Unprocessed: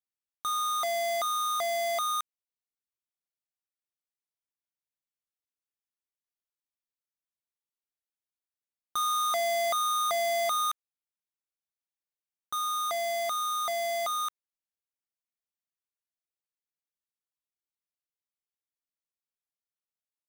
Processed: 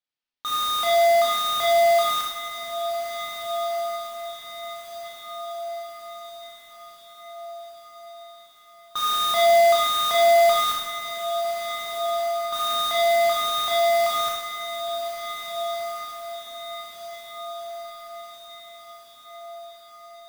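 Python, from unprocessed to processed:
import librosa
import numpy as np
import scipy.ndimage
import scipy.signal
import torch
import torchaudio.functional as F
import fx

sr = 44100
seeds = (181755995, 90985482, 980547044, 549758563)

p1 = scipy.signal.sosfilt(scipy.signal.butter(4, 4400.0, 'lowpass', fs=sr, output='sos'), x)
p2 = fx.high_shelf(p1, sr, hz=2800.0, db=10.0)
p3 = fx.mod_noise(p2, sr, seeds[0], snr_db=12)
p4 = p3 + fx.echo_diffused(p3, sr, ms=1649, feedback_pct=52, wet_db=-9.0, dry=0)
y = fx.rev_schroeder(p4, sr, rt60_s=0.86, comb_ms=25, drr_db=-2.5)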